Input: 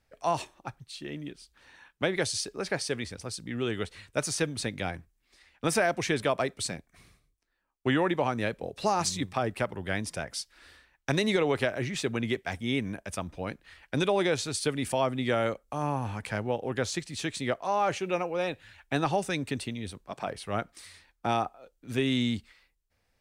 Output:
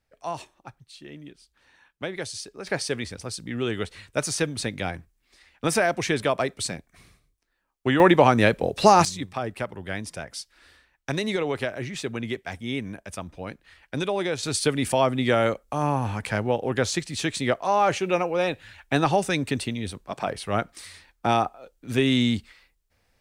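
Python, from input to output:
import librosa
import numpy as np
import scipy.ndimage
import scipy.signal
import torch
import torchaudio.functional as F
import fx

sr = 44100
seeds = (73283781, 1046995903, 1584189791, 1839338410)

y = fx.gain(x, sr, db=fx.steps((0.0, -4.0), (2.67, 3.5), (8.0, 11.5), (9.05, -0.5), (14.43, 6.0)))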